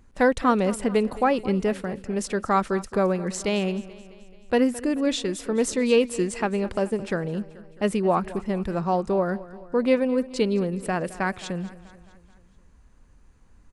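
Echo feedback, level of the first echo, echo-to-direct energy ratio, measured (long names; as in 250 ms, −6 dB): 57%, −18.0 dB, −16.5 dB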